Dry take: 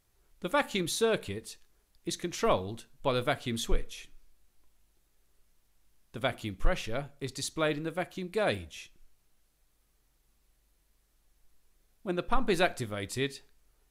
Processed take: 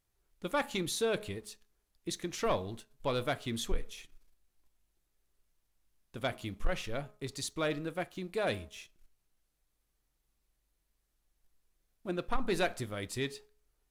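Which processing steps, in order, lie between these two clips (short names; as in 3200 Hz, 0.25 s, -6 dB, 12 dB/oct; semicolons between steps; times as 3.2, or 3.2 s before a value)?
de-hum 210.5 Hz, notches 6; sample leveller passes 1; gain -6.5 dB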